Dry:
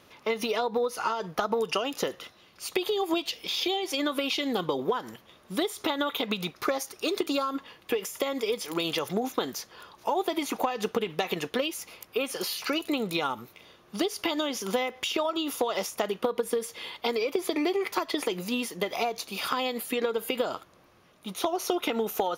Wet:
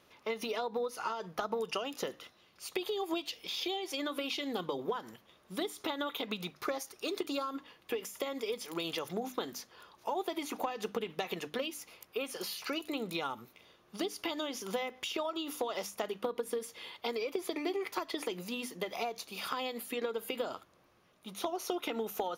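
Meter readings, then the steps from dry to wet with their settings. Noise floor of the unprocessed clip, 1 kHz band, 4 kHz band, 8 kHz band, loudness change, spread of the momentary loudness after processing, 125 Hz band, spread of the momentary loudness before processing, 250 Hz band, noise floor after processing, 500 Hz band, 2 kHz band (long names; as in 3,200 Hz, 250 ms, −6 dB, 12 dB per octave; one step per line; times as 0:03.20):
−58 dBFS, −7.5 dB, −7.5 dB, −7.5 dB, −7.5 dB, 5 LU, −8.5 dB, 5 LU, −8.0 dB, −66 dBFS, −7.5 dB, −7.5 dB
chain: mains-hum notches 50/100/150/200/250/300 Hz
level −7.5 dB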